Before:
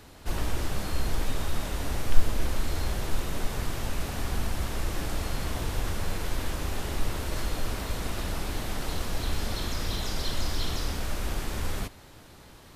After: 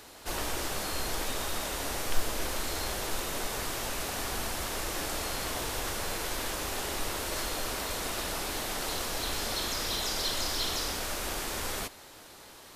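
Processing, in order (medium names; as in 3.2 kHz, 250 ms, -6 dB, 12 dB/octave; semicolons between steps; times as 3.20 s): tone controls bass -13 dB, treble +4 dB; trim +2 dB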